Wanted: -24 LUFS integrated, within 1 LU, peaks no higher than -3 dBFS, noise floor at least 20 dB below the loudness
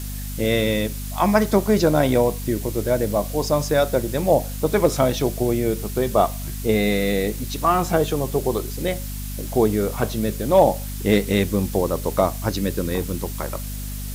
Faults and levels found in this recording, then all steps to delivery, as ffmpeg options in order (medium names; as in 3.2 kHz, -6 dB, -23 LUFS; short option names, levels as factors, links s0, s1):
hum 50 Hz; highest harmonic 250 Hz; hum level -28 dBFS; noise floor -30 dBFS; noise floor target -42 dBFS; loudness -21.5 LUFS; peak level -4.0 dBFS; loudness target -24.0 LUFS
-> -af "bandreject=f=50:t=h:w=6,bandreject=f=100:t=h:w=6,bandreject=f=150:t=h:w=6,bandreject=f=200:t=h:w=6,bandreject=f=250:t=h:w=6"
-af "afftdn=nr=12:nf=-30"
-af "volume=0.75"